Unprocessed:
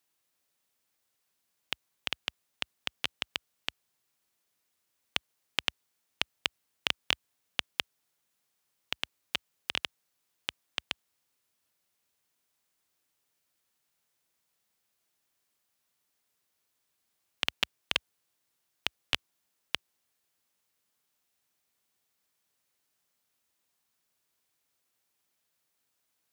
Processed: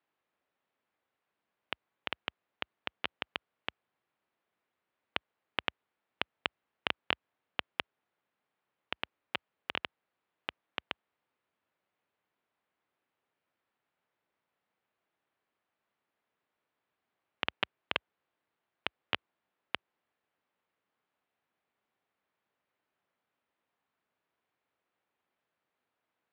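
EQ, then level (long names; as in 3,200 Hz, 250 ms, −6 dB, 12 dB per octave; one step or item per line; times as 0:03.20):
high-pass filter 600 Hz 6 dB per octave
high-frequency loss of the air 440 metres
spectral tilt −2 dB per octave
+6.0 dB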